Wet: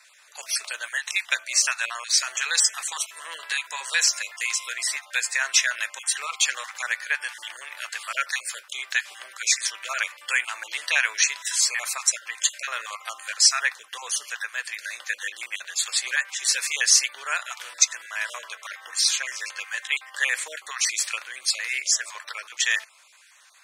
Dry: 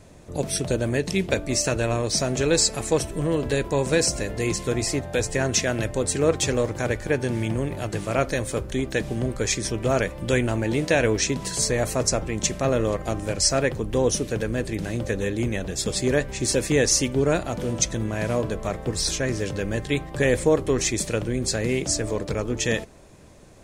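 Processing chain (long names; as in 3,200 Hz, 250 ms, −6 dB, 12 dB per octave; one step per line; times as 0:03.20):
time-frequency cells dropped at random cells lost 22%
high-pass filter 1,300 Hz 24 dB per octave
high-shelf EQ 5,100 Hz −4.5 dB
level +7.5 dB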